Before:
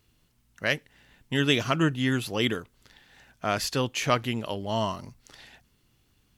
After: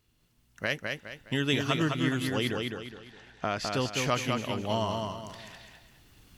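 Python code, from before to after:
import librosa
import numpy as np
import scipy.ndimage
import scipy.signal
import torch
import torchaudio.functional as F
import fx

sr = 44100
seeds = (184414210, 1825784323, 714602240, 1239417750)

y = fx.recorder_agc(x, sr, target_db=-14.0, rise_db_per_s=8.4, max_gain_db=30)
y = fx.lowpass(y, sr, hz=6000.0, slope=12, at=(2.31, 3.74))
y = fx.echo_feedback(y, sr, ms=207, feedback_pct=36, wet_db=-4.0)
y = F.gain(torch.from_numpy(y), -5.0).numpy()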